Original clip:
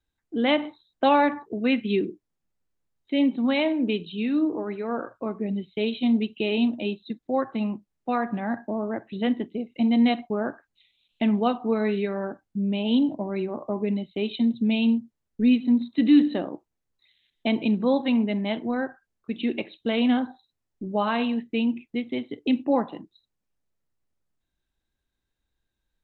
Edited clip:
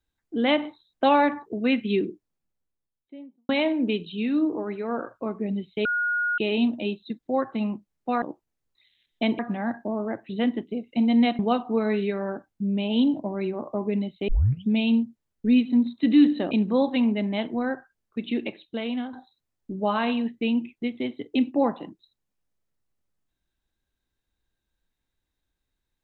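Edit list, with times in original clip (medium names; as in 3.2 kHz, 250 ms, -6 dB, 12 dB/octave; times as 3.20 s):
2.06–3.49 s: studio fade out
5.85–6.38 s: bleep 1.44 kHz -22 dBFS
10.22–11.34 s: delete
14.23 s: tape start 0.41 s
16.46–17.63 s: move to 8.22 s
19.35–20.25 s: fade out, to -12 dB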